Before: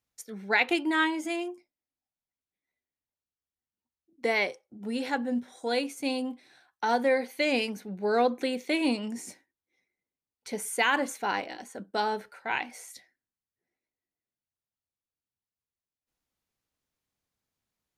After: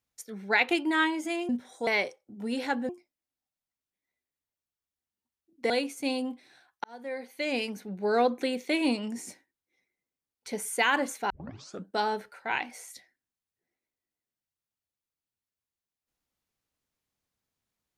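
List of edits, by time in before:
1.49–4.30 s: swap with 5.32–5.70 s
6.84–7.88 s: fade in
11.30 s: tape start 0.55 s

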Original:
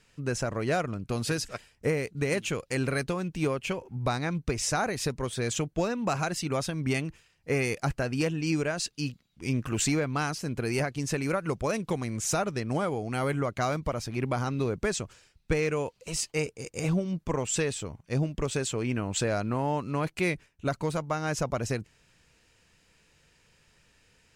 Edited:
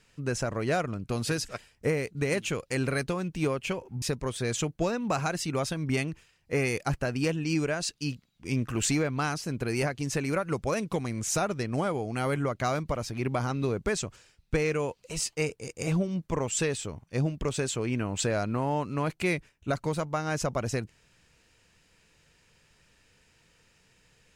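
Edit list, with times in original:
4.02–4.99 s: delete

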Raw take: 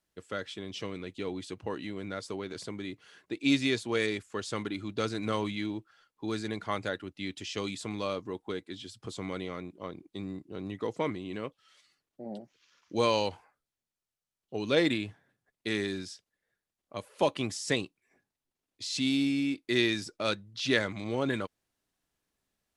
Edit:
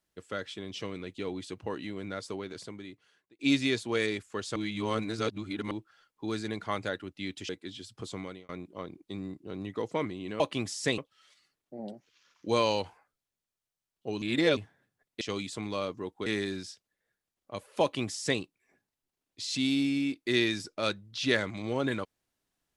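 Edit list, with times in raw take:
2.32–3.39 s: fade out
4.56–5.71 s: reverse
7.49–8.54 s: move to 15.68 s
9.18–9.54 s: fade out
14.69–15.04 s: reverse
17.24–17.82 s: copy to 11.45 s

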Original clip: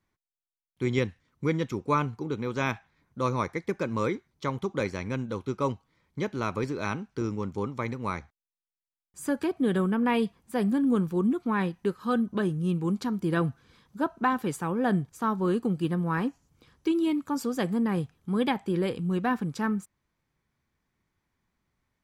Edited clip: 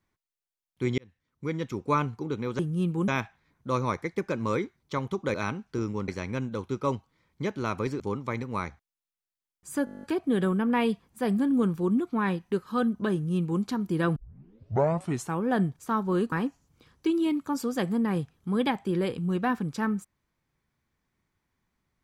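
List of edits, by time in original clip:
0.98–1.87 s: fade in
6.77–7.51 s: move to 4.85 s
9.36 s: stutter 0.02 s, 10 plays
12.46–12.95 s: copy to 2.59 s
13.49 s: tape start 1.19 s
15.65–16.13 s: delete

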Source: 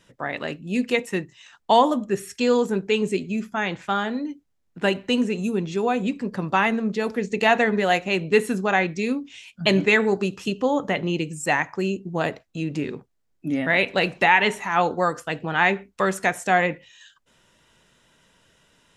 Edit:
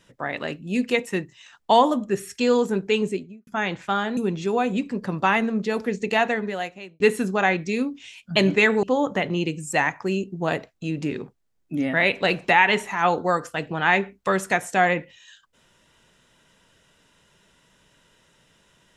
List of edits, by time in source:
2.97–3.47 s: studio fade out
4.17–5.47 s: delete
7.20–8.30 s: fade out
10.13–10.56 s: delete

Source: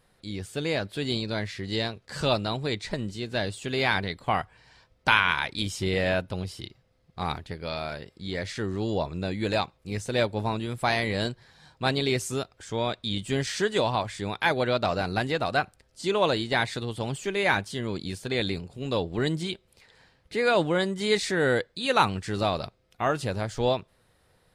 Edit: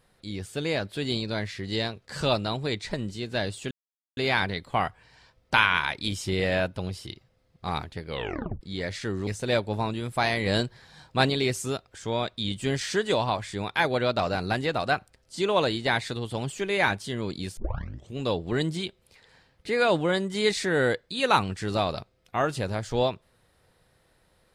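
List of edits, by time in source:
3.71 s: insert silence 0.46 s
7.62 s: tape stop 0.53 s
8.81–9.93 s: delete
11.12–11.96 s: gain +3.5 dB
18.23 s: tape start 0.58 s

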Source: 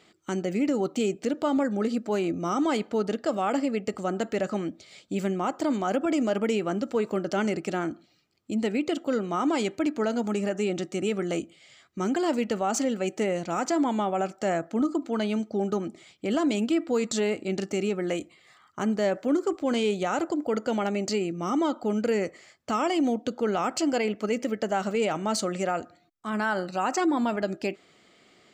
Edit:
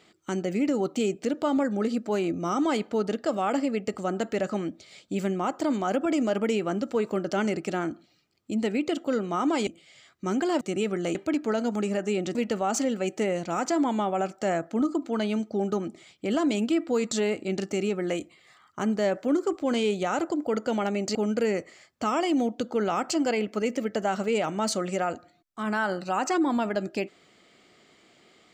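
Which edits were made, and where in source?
9.67–10.87 s: swap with 11.41–12.35 s
21.15–21.82 s: delete

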